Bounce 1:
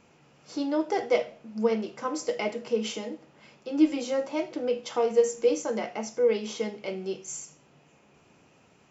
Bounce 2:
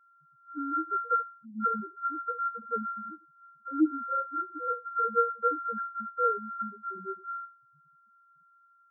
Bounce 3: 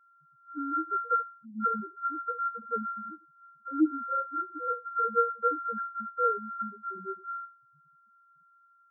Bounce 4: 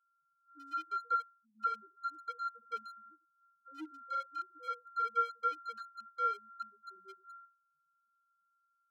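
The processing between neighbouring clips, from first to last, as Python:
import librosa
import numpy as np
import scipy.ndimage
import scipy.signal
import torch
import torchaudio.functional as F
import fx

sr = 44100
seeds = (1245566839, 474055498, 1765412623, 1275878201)

y1 = np.r_[np.sort(x[:len(x) // 32 * 32].reshape(-1, 32), axis=1).ravel(), x[len(x) // 32 * 32:]]
y1 = fx.peak_eq(y1, sr, hz=1600.0, db=12.0, octaves=0.55)
y1 = fx.spec_topn(y1, sr, count=2)
y1 = y1 * 10.0 ** (-1.5 / 20.0)
y2 = y1
y3 = fx.wiener(y2, sr, points=25)
y3 = scipy.signal.sosfilt(scipy.signal.butter(2, 870.0, 'highpass', fs=sr, output='sos'), y3)
y3 = y3 * 10.0 ** (-3.5 / 20.0)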